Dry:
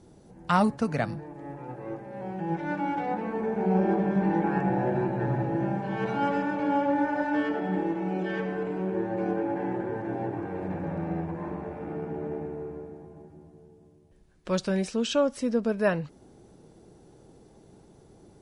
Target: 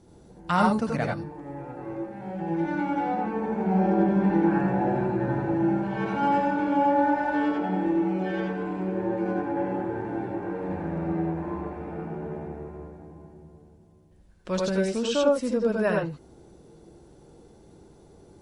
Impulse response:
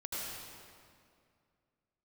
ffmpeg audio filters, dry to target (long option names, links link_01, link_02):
-filter_complex "[1:a]atrim=start_sample=2205,atrim=end_sample=4410,asetrate=43218,aresample=44100[link_01];[0:a][link_01]afir=irnorm=-1:irlink=0,volume=4dB"